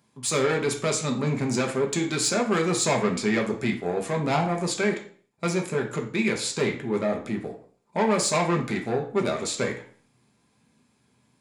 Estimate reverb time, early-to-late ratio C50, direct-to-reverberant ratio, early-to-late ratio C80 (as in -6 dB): 0.50 s, 10.0 dB, 1.5 dB, 14.0 dB